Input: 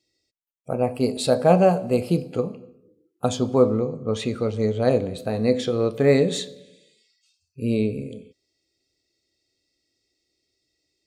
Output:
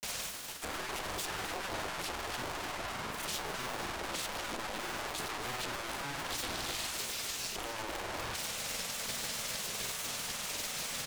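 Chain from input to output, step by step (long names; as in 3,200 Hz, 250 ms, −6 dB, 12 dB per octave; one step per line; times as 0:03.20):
sign of each sample alone
gate on every frequency bin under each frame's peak −10 dB weak
granular cloud, spray 32 ms
single-tap delay 261 ms −11.5 dB
highs frequency-modulated by the lows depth 0.77 ms
level −7.5 dB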